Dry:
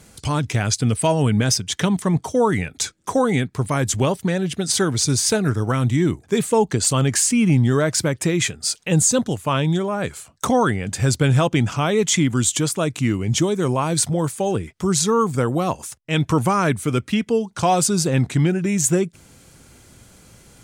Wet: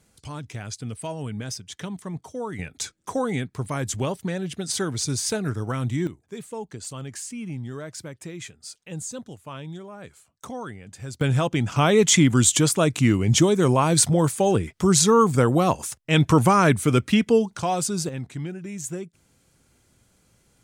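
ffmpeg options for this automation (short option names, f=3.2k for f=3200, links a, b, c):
-af "asetnsamples=n=441:p=0,asendcmd='2.59 volume volume -7dB;6.07 volume volume -17dB;11.21 volume volume -5dB;11.76 volume volume 1.5dB;17.57 volume volume -7dB;18.09 volume volume -14dB',volume=-14dB"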